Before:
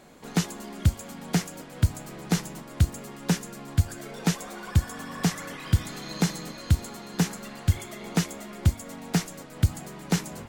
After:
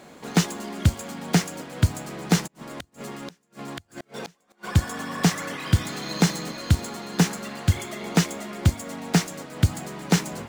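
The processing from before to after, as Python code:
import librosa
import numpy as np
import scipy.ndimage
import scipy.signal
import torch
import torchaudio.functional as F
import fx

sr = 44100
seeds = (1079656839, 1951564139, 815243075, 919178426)

y = scipy.ndimage.median_filter(x, 3, mode='constant')
y = fx.highpass(y, sr, hz=120.0, slope=6)
y = fx.gate_flip(y, sr, shuts_db=-29.0, range_db=-35, at=(2.46, 4.63), fade=0.02)
y = y * 10.0 ** (6.0 / 20.0)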